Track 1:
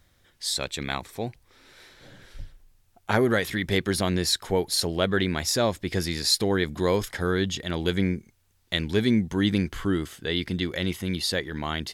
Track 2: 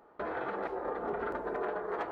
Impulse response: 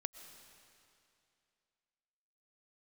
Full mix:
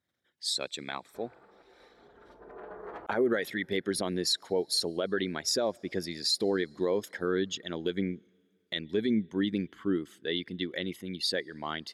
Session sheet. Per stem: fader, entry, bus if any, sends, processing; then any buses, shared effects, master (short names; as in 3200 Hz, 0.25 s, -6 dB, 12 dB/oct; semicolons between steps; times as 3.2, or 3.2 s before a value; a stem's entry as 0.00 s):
+1.0 dB, 0.00 s, send -22.5 dB, formant sharpening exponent 1.5; HPF 230 Hz 12 dB/oct; upward expander 1.5:1, over -45 dBFS
-8.0 dB, 0.95 s, no send, low shelf 170 Hz +9 dB; auto duck -17 dB, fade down 1.60 s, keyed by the first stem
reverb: on, RT60 2.6 s, pre-delay 80 ms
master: limiter -18.5 dBFS, peak gain reduction 11 dB